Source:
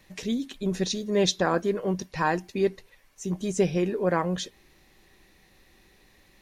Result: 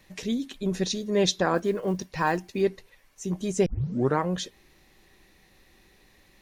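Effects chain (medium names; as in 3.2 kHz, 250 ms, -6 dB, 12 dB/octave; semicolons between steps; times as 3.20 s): 1.55–2.64 s: block-companded coder 7-bit; 3.66 s: tape start 0.54 s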